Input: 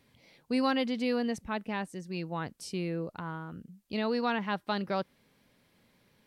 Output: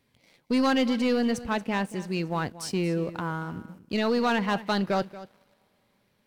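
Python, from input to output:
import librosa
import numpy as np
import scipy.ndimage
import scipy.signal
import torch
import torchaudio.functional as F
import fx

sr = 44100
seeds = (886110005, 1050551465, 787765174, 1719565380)

y = fx.rev_double_slope(x, sr, seeds[0], early_s=0.24, late_s=4.2, knee_db=-20, drr_db=18.0)
y = fx.leveller(y, sr, passes=2)
y = y + 10.0 ** (-16.0 / 20.0) * np.pad(y, (int(231 * sr / 1000.0), 0))[:len(y)]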